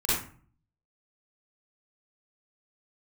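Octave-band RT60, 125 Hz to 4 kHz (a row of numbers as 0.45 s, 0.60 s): 0.75 s, 0.60 s, 0.45 s, 0.45 s, 0.40 s, 0.30 s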